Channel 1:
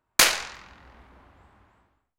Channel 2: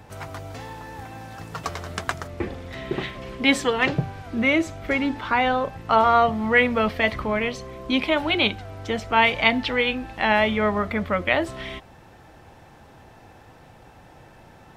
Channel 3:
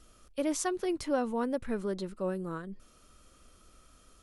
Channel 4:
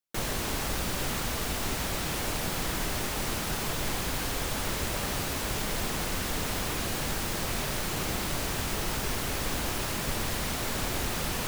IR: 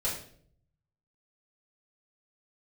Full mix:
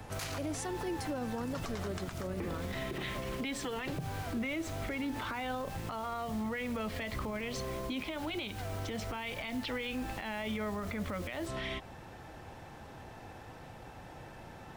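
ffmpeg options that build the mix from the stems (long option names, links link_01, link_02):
-filter_complex "[0:a]volume=-16dB[link_01];[1:a]acompressor=threshold=-25dB:ratio=6,volume=-0.5dB[link_02];[2:a]volume=-1dB,asplit=2[link_03][link_04];[3:a]volume=-17.5dB[link_05];[link_04]apad=whole_len=505976[link_06];[link_05][link_06]sidechaincompress=threshold=-35dB:ratio=8:attack=43:release=242[link_07];[link_01][link_02][link_03][link_07]amix=inputs=4:normalize=0,acrossover=split=330|3000[link_08][link_09][link_10];[link_09]acompressor=threshold=-34dB:ratio=2[link_11];[link_08][link_11][link_10]amix=inputs=3:normalize=0,alimiter=level_in=4.5dB:limit=-24dB:level=0:latency=1:release=70,volume=-4.5dB"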